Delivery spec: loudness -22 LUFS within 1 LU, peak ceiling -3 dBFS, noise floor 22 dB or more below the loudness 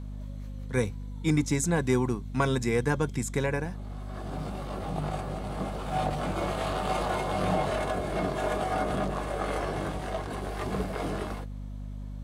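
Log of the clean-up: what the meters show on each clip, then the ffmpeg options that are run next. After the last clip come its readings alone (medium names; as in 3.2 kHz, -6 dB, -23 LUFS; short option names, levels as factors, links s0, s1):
hum 50 Hz; highest harmonic 250 Hz; hum level -35 dBFS; loudness -30.5 LUFS; peak level -12.0 dBFS; loudness target -22.0 LUFS
-> -af "bandreject=f=50:t=h:w=4,bandreject=f=100:t=h:w=4,bandreject=f=150:t=h:w=4,bandreject=f=200:t=h:w=4,bandreject=f=250:t=h:w=4"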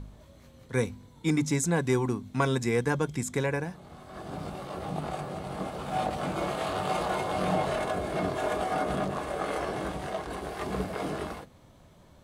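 hum not found; loudness -31.0 LUFS; peak level -12.5 dBFS; loudness target -22.0 LUFS
-> -af "volume=2.82"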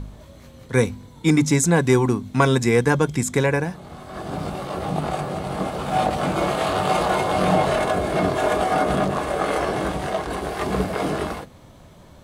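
loudness -22.0 LUFS; peak level -3.5 dBFS; noise floor -46 dBFS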